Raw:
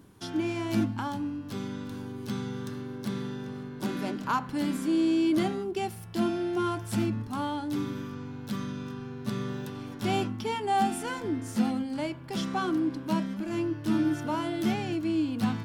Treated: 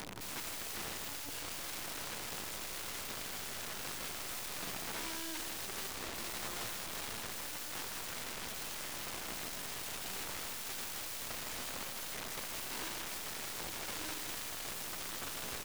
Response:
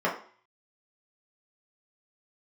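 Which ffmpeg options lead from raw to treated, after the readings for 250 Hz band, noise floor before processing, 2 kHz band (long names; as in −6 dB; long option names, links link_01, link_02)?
−24.5 dB, −41 dBFS, −3.5 dB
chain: -filter_complex "[0:a]bandreject=frequency=60:width_type=h:width=6,bandreject=frequency=120:width_type=h:width=6,bandreject=frequency=180:width_type=h:width=6,bandreject=frequency=240:width_type=h:width=6,bandreject=frequency=300:width_type=h:width=6,bandreject=frequency=360:width_type=h:width=6,acrossover=split=3200[link_01][link_02];[link_02]acompressor=threshold=-53dB:ratio=4:attack=1:release=60[link_03];[link_01][link_03]amix=inputs=2:normalize=0,lowpass=11000,flanger=delay=16.5:depth=4.5:speed=0.14,equalizer=frequency=8500:width=0.38:gain=-5,acompressor=mode=upward:threshold=-44dB:ratio=2.5,asoftclip=type=tanh:threshold=-32.5dB,anlmdn=0.000398,aeval=exprs='(mod(224*val(0)+1,2)-1)/224':channel_layout=same,acrusher=bits=9:dc=4:mix=0:aa=0.000001,asplit=2[link_04][link_05];[link_05]aecho=0:1:159:0.473[link_06];[link_04][link_06]amix=inputs=2:normalize=0,volume=8dB"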